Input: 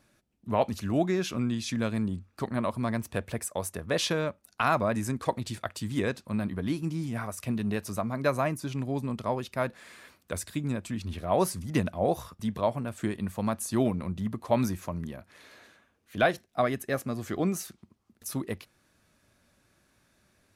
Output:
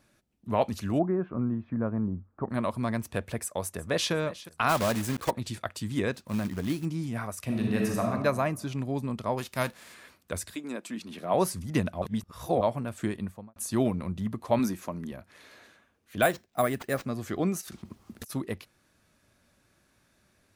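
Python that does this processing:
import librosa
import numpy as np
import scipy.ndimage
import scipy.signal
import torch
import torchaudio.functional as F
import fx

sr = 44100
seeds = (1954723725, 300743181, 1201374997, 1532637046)

y = fx.lowpass(x, sr, hz=1300.0, slope=24, at=(0.98, 2.49), fade=0.02)
y = fx.echo_throw(y, sr, start_s=3.42, length_s=0.7, ms=360, feedback_pct=50, wet_db=-16.5)
y = fx.block_float(y, sr, bits=3, at=(4.68, 5.29), fade=0.02)
y = fx.quant_float(y, sr, bits=2, at=(6.13, 6.84), fade=0.02)
y = fx.reverb_throw(y, sr, start_s=7.44, length_s=0.62, rt60_s=1.3, drr_db=-1.0)
y = fx.envelope_flatten(y, sr, power=0.6, at=(9.37, 9.93), fade=0.02)
y = fx.highpass(y, sr, hz=fx.line((10.54, 320.0), (11.33, 150.0)), slope=24, at=(10.54, 11.33), fade=0.02)
y = fx.studio_fade_out(y, sr, start_s=13.11, length_s=0.45)
y = fx.low_shelf_res(y, sr, hz=160.0, db=-8.5, q=1.5, at=(14.59, 15.12))
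y = fx.resample_bad(y, sr, factor=4, down='none', up='hold', at=(16.22, 17.05))
y = fx.over_compress(y, sr, threshold_db=-53.0, ratio=-1.0, at=(17.6, 18.29), fade=0.02)
y = fx.edit(y, sr, fx.reverse_span(start_s=12.02, length_s=0.59), tone=tone)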